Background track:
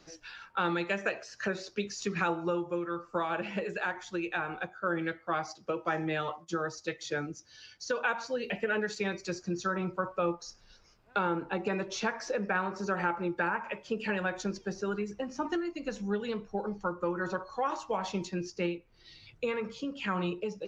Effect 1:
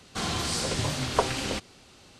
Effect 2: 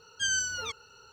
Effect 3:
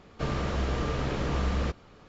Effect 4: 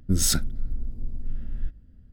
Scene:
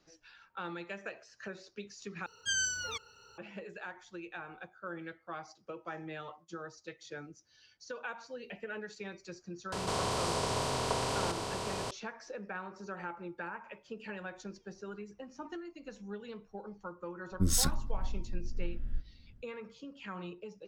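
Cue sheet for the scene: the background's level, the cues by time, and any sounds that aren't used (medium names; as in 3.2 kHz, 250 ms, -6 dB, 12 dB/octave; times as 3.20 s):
background track -11 dB
2.26 s: replace with 2 -3.5 dB
9.72 s: add 1 -12.5 dB + spectral levelling over time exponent 0.2
17.31 s: add 4 -6 dB
not used: 3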